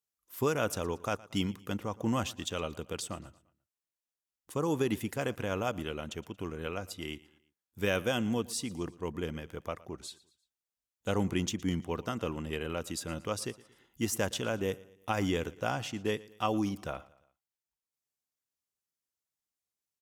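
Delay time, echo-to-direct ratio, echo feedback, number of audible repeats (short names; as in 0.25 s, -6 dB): 0.115 s, -20.0 dB, 46%, 3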